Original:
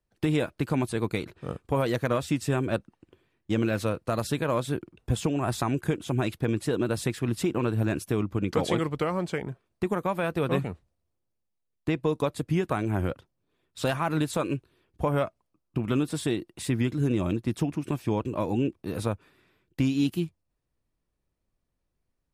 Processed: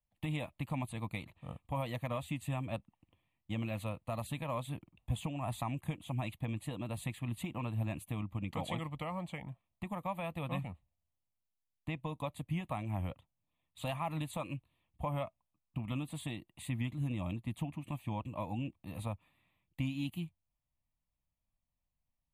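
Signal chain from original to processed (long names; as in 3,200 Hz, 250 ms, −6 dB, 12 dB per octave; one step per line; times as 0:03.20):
phaser with its sweep stopped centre 1,500 Hz, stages 6
level −7 dB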